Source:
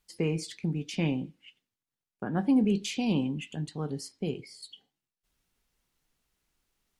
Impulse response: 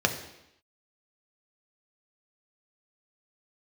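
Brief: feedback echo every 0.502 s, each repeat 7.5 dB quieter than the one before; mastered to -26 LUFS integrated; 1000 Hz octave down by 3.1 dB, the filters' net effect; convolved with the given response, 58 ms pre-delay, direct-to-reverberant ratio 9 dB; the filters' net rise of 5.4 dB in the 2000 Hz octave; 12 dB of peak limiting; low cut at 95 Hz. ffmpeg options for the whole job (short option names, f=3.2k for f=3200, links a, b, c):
-filter_complex "[0:a]highpass=95,equalizer=f=1k:t=o:g=-6.5,equalizer=f=2k:t=o:g=8.5,alimiter=level_in=2.5dB:limit=-24dB:level=0:latency=1,volume=-2.5dB,aecho=1:1:502|1004|1506|2008|2510:0.422|0.177|0.0744|0.0312|0.0131,asplit=2[a][b];[1:a]atrim=start_sample=2205,adelay=58[c];[b][c]afir=irnorm=-1:irlink=0,volume=-21.5dB[d];[a][d]amix=inputs=2:normalize=0,volume=9.5dB"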